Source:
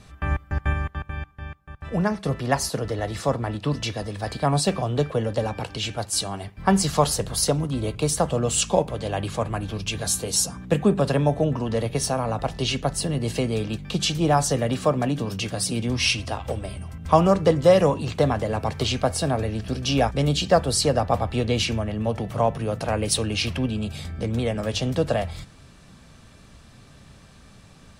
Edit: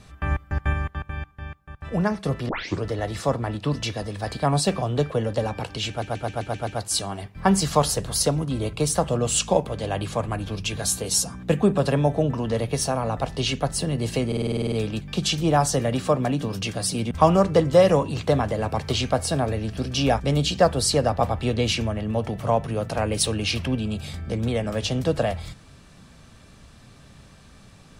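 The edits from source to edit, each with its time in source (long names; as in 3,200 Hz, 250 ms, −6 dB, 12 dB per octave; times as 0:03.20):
0:02.49: tape start 0.35 s
0:05.89: stutter 0.13 s, 7 plays
0:13.49: stutter 0.05 s, 10 plays
0:15.88–0:17.02: remove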